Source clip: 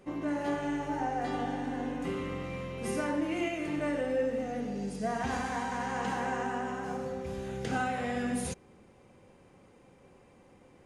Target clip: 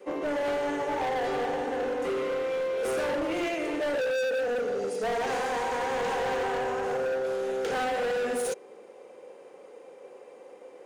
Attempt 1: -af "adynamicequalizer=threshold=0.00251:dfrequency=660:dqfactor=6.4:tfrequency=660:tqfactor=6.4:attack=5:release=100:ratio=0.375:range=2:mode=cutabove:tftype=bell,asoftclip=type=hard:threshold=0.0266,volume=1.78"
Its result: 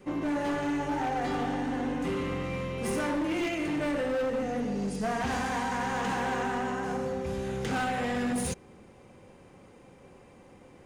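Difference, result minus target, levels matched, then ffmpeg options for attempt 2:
500 Hz band -4.0 dB
-af "adynamicequalizer=threshold=0.00251:dfrequency=660:dqfactor=6.4:tfrequency=660:tqfactor=6.4:attack=5:release=100:ratio=0.375:range=2:mode=cutabove:tftype=bell,highpass=f=470:t=q:w=3.8,asoftclip=type=hard:threshold=0.0266,volume=1.78"

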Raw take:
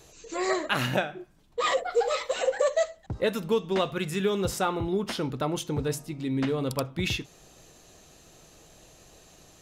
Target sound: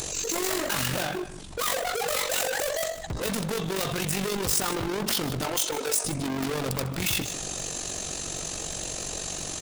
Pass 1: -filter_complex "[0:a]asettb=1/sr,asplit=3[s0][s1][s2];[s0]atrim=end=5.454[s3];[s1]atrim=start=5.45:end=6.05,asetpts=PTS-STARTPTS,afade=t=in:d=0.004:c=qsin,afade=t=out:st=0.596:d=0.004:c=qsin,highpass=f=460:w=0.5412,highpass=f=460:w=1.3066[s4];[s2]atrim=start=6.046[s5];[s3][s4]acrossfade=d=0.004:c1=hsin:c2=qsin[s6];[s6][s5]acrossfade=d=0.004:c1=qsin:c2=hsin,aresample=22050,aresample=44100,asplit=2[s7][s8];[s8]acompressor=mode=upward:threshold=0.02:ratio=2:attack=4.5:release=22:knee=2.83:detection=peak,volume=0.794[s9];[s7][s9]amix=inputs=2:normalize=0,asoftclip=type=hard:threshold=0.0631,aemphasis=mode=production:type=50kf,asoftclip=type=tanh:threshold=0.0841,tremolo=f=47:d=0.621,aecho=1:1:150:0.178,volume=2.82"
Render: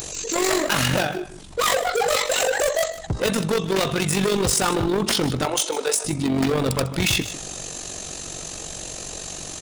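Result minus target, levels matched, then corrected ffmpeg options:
hard clipper: distortion -5 dB
-filter_complex "[0:a]asettb=1/sr,asplit=3[s0][s1][s2];[s0]atrim=end=5.454[s3];[s1]atrim=start=5.45:end=6.05,asetpts=PTS-STARTPTS,afade=t=in:d=0.004:c=qsin,afade=t=out:st=0.596:d=0.004:c=qsin,highpass=f=460:w=0.5412,highpass=f=460:w=1.3066[s4];[s2]atrim=start=6.046[s5];[s3][s4]acrossfade=d=0.004:c1=hsin:c2=qsin[s6];[s6][s5]acrossfade=d=0.004:c1=qsin:c2=hsin,aresample=22050,aresample=44100,asplit=2[s7][s8];[s8]acompressor=mode=upward:threshold=0.02:ratio=2:attack=4.5:release=22:knee=2.83:detection=peak,volume=0.794[s9];[s7][s9]amix=inputs=2:normalize=0,asoftclip=type=hard:threshold=0.0178,aemphasis=mode=production:type=50kf,asoftclip=type=tanh:threshold=0.0841,tremolo=f=47:d=0.621,aecho=1:1:150:0.178,volume=2.82"

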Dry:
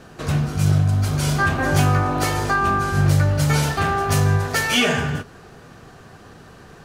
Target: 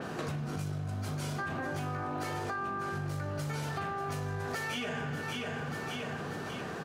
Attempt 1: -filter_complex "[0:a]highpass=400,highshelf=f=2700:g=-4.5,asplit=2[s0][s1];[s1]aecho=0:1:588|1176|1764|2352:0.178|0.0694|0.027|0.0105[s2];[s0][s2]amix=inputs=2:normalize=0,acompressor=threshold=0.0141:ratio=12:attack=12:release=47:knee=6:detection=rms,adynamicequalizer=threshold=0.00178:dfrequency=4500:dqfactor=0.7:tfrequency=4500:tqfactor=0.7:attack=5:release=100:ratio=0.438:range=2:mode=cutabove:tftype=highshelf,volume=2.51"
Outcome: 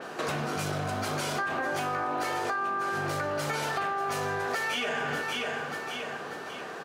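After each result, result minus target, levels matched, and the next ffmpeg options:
125 Hz band -8.5 dB; compression: peak gain reduction -7 dB
-filter_complex "[0:a]highpass=140,highshelf=f=2700:g=-4.5,asplit=2[s0][s1];[s1]aecho=0:1:588|1176|1764|2352:0.178|0.0694|0.027|0.0105[s2];[s0][s2]amix=inputs=2:normalize=0,acompressor=threshold=0.0141:ratio=12:attack=12:release=47:knee=6:detection=rms,adynamicequalizer=threshold=0.00178:dfrequency=4500:dqfactor=0.7:tfrequency=4500:tqfactor=0.7:attack=5:release=100:ratio=0.438:range=2:mode=cutabove:tftype=highshelf,volume=2.51"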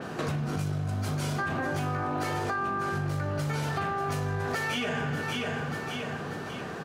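compression: peak gain reduction -5.5 dB
-filter_complex "[0:a]highpass=140,highshelf=f=2700:g=-4.5,asplit=2[s0][s1];[s1]aecho=0:1:588|1176|1764|2352:0.178|0.0694|0.027|0.0105[s2];[s0][s2]amix=inputs=2:normalize=0,acompressor=threshold=0.00708:ratio=12:attack=12:release=47:knee=6:detection=rms,adynamicequalizer=threshold=0.00178:dfrequency=4500:dqfactor=0.7:tfrequency=4500:tqfactor=0.7:attack=5:release=100:ratio=0.438:range=2:mode=cutabove:tftype=highshelf,volume=2.51"

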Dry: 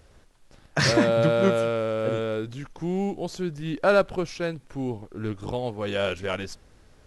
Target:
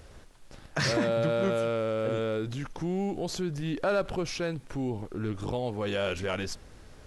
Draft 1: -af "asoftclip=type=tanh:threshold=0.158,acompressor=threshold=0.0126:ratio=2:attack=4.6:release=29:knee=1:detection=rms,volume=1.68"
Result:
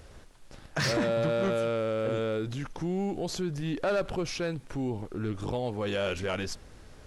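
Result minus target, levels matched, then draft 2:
saturation: distortion +14 dB
-af "asoftclip=type=tanh:threshold=0.447,acompressor=threshold=0.0126:ratio=2:attack=4.6:release=29:knee=1:detection=rms,volume=1.68"

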